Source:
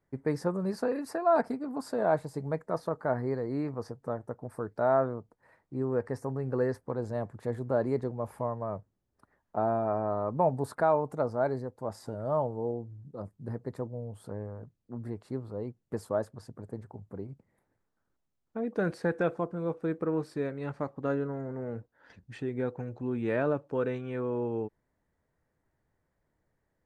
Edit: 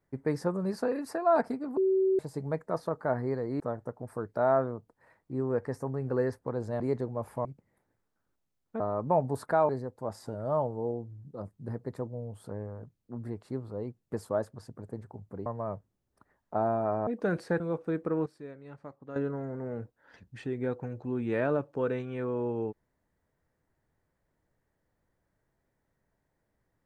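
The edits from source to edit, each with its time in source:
0:01.77–0:02.19: beep over 381 Hz −22 dBFS
0:03.60–0:04.02: remove
0:07.22–0:07.83: remove
0:08.48–0:10.09: swap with 0:17.26–0:18.61
0:10.98–0:11.49: remove
0:19.14–0:19.56: remove
0:20.22–0:21.12: clip gain −11.5 dB

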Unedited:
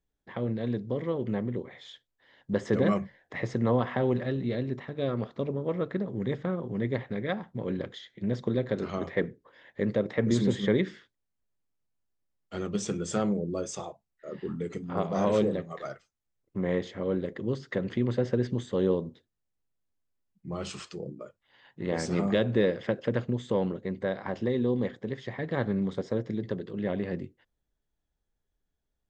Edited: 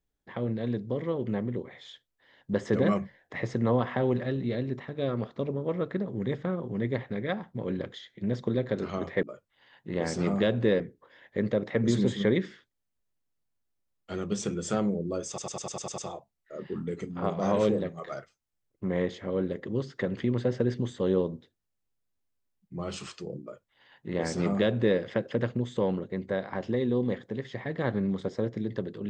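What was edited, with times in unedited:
0:13.71: stutter 0.10 s, 8 plays
0:21.15–0:22.72: duplicate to 0:09.23

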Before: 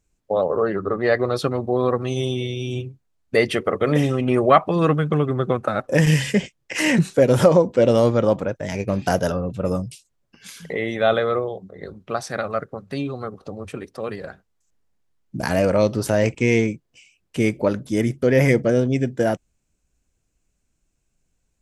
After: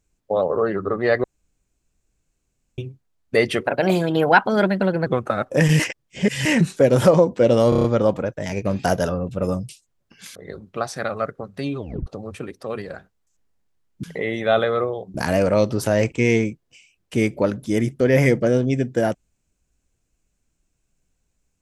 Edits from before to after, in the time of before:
0:01.24–0:02.78: fill with room tone
0:03.67–0:05.44: play speed 127%
0:06.17–0:06.83: reverse
0:08.07: stutter 0.03 s, 6 plays
0:10.58–0:11.69: move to 0:15.37
0:13.11: tape stop 0.29 s

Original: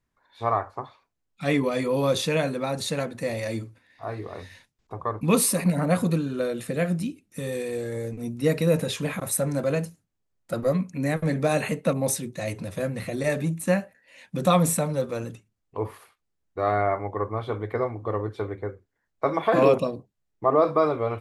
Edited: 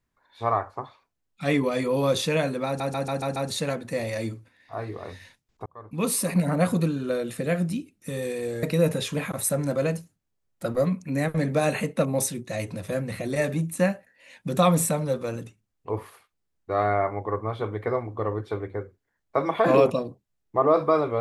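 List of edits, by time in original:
0:02.66: stutter 0.14 s, 6 plays
0:04.96–0:05.69: fade in
0:07.93–0:08.51: remove

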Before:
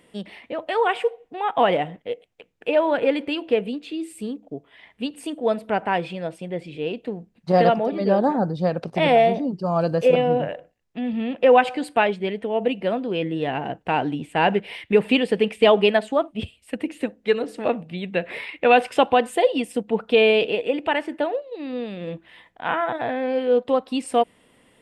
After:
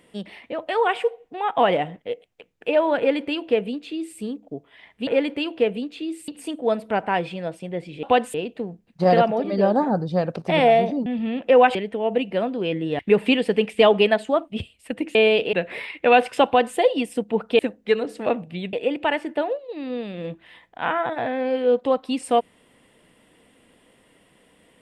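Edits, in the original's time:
0:02.98–0:04.19: duplicate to 0:05.07
0:09.54–0:11.00: remove
0:11.69–0:12.25: remove
0:13.49–0:14.82: remove
0:16.98–0:18.12: swap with 0:20.18–0:20.56
0:19.05–0:19.36: duplicate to 0:06.82

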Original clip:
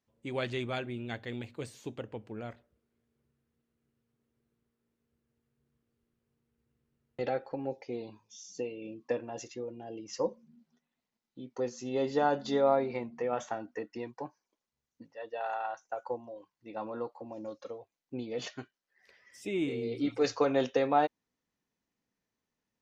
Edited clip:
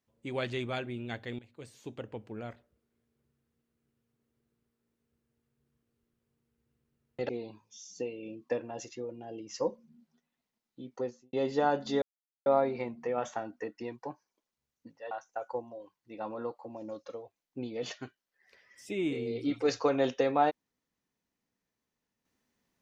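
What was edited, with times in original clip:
0:01.39–0:02.08: fade in, from −17.5 dB
0:07.29–0:07.88: remove
0:11.52–0:11.92: fade out and dull
0:12.61: splice in silence 0.44 s
0:15.26–0:15.67: remove

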